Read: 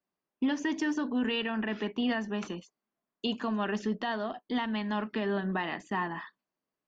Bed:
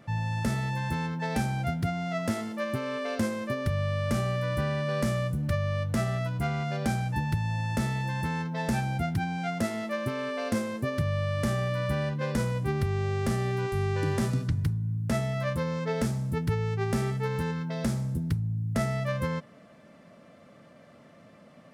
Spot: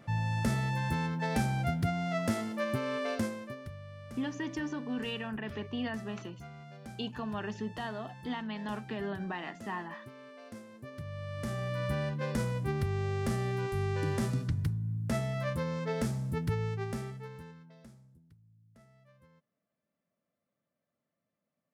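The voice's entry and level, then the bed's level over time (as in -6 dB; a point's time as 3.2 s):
3.75 s, -6.0 dB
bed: 3.1 s -1.5 dB
3.8 s -18.5 dB
10.68 s -18.5 dB
11.84 s -4 dB
16.65 s -4 dB
18.28 s -33 dB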